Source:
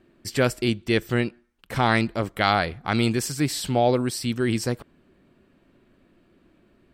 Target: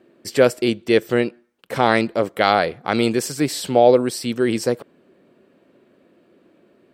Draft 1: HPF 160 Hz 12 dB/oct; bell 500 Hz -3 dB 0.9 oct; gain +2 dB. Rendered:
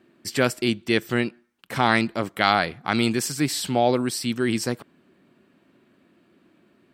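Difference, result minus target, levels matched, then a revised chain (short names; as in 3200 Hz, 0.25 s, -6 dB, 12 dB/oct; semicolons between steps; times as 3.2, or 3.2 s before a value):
500 Hz band -4.5 dB
HPF 160 Hz 12 dB/oct; bell 500 Hz +8.5 dB 0.9 oct; gain +2 dB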